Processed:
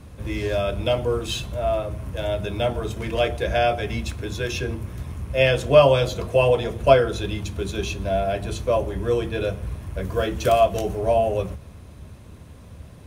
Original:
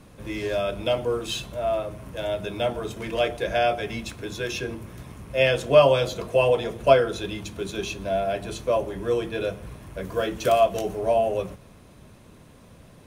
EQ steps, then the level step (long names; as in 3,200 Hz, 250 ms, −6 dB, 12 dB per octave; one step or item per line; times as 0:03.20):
parametric band 73 Hz +14 dB 1.1 octaves
+1.5 dB